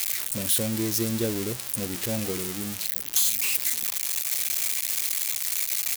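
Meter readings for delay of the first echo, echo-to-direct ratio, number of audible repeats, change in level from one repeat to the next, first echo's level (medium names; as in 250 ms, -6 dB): 1151 ms, -23.0 dB, 2, -8.5 dB, -23.5 dB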